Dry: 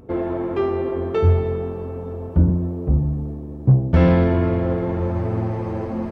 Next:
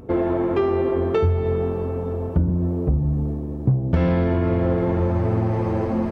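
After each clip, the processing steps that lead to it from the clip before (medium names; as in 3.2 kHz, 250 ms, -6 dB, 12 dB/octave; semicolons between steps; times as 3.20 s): compression 6:1, threshold -20 dBFS, peak gain reduction 10.5 dB; trim +4 dB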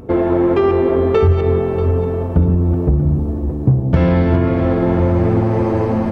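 backward echo that repeats 319 ms, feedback 50%, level -8 dB; trim +5.5 dB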